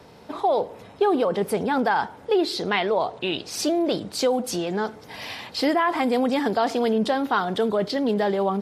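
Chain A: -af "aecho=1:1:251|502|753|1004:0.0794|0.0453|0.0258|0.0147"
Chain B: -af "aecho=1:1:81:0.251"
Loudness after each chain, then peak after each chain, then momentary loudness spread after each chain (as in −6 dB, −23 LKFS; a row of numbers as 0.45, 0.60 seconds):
−23.5, −23.5 LKFS; −8.5, −8.5 dBFS; 6, 6 LU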